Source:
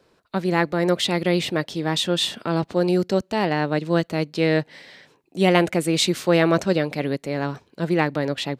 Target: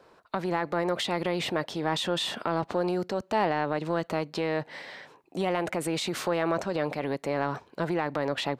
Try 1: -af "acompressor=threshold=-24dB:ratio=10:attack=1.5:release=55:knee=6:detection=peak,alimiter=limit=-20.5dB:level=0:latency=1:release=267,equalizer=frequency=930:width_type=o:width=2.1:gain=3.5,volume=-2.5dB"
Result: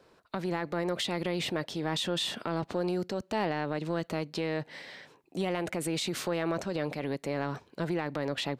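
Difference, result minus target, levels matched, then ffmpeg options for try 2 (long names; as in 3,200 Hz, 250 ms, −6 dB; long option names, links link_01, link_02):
1,000 Hz band −3.5 dB
-af "acompressor=threshold=-24dB:ratio=10:attack=1.5:release=55:knee=6:detection=peak,alimiter=limit=-20.5dB:level=0:latency=1:release=267,equalizer=frequency=930:width_type=o:width=2.1:gain=10.5,volume=-2.5dB"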